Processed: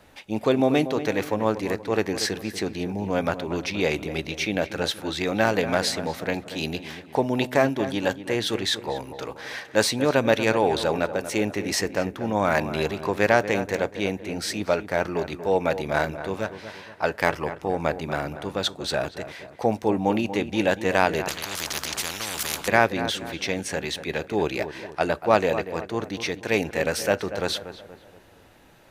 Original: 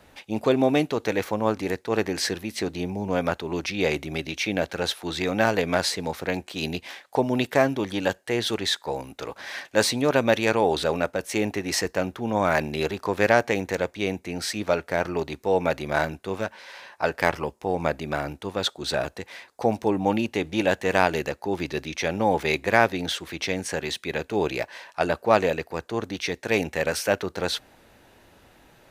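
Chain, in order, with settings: filtered feedback delay 237 ms, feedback 46%, low-pass 1.8 kHz, level -11 dB; on a send at -23 dB: reverberation, pre-delay 4 ms; 21.28–22.68 s: on the sum: spectrum-flattening compressor 10:1

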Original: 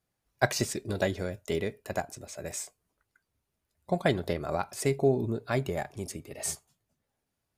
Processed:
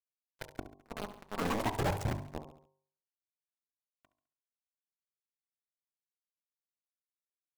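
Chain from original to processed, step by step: local Wiener filter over 9 samples; Doppler pass-by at 2.02 s, 20 m/s, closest 1.4 m; ever faster or slower copies 94 ms, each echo +3 st, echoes 3; bass shelf 310 Hz +9 dB; upward compressor, threshold -46 dBFS; companded quantiser 2-bit; gate -41 dBFS, range -27 dB; flange 0.43 Hz, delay 0.1 ms, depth 5.3 ms, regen -25%; de-hum 48.81 Hz, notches 23; on a send: feedback delay 69 ms, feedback 44%, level -15.5 dB; on the sum: saturation -32 dBFS, distortion -14 dB; treble shelf 2.4 kHz -8.5 dB; trim +8.5 dB

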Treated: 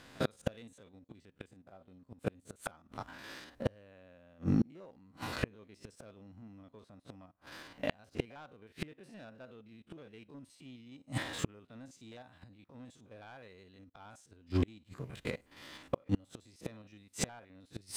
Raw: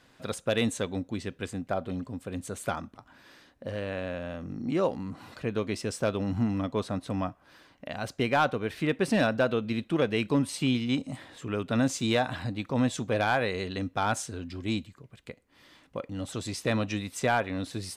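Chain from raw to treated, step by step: spectrogram pixelated in time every 50 ms; waveshaping leveller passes 1; inverted gate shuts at -25 dBFS, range -35 dB; trim +7.5 dB

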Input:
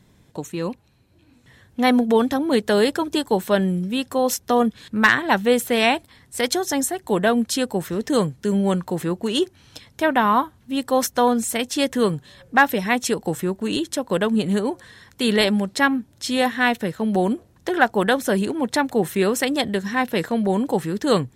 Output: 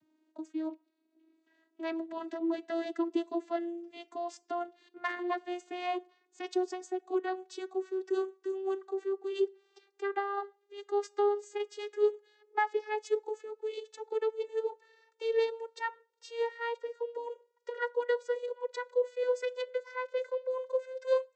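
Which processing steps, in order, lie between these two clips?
vocoder on a note that slides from D#4, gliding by +9 st; on a send at -19 dB: reverberation RT60 0.35 s, pre-delay 7 ms; on the sum: harmonic-percussive split harmonic -4 dB; trim -8.5 dB

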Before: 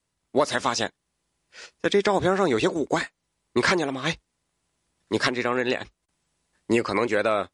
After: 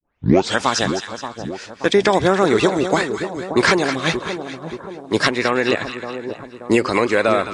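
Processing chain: tape start-up on the opening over 0.60 s; two-band feedback delay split 1.1 kHz, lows 579 ms, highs 211 ms, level -9 dB; trim +6 dB

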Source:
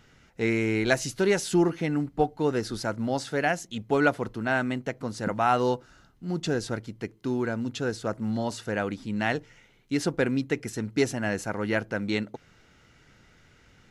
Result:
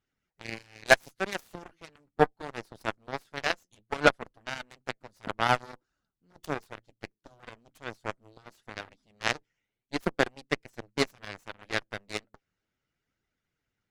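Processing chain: flange 0.68 Hz, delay 2.3 ms, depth 9 ms, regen +46%; harmonic-percussive split percussive +9 dB; Chebyshev shaper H 3 -35 dB, 4 -27 dB, 7 -17 dB, 8 -43 dB, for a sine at -3 dBFS

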